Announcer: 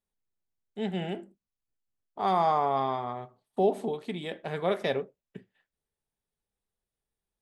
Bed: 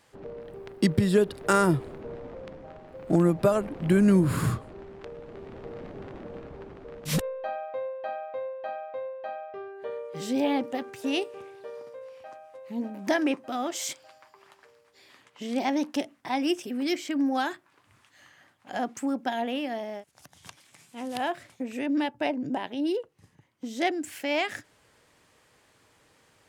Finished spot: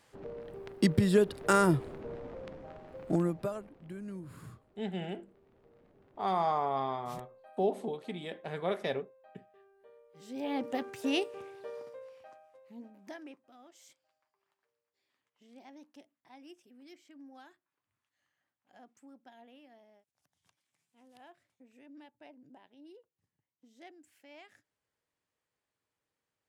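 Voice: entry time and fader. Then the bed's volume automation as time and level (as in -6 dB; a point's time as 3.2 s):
4.00 s, -5.0 dB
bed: 2.98 s -3 dB
3.93 s -23 dB
10.09 s -23 dB
10.7 s -2.5 dB
11.81 s -2.5 dB
13.53 s -26.5 dB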